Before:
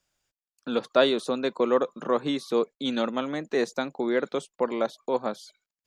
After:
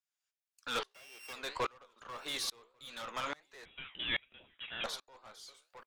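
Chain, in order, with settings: 0.91–1.33 s: sorted samples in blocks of 16 samples; high-pass 1.1 kHz 12 dB/octave; compression, threshold -32 dBFS, peak gain reduction 14 dB; flange 1.7 Hz, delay 7.8 ms, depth 9.1 ms, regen -75%; valve stage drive 43 dB, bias 0.3; on a send: delay 1143 ms -18.5 dB; 3.65–4.84 s: on the sum: frequency inversion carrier 3.8 kHz; sawtooth tremolo in dB swelling 1.2 Hz, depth 31 dB; trim +16 dB

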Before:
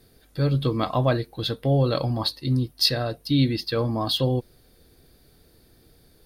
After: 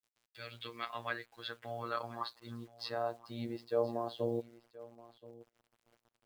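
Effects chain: gate -54 dBFS, range -12 dB; band-pass sweep 2.5 kHz -> 550 Hz, 0.36–4.20 s; robot voice 117 Hz; bit crusher 11-bit; on a send: delay 1026 ms -19 dB

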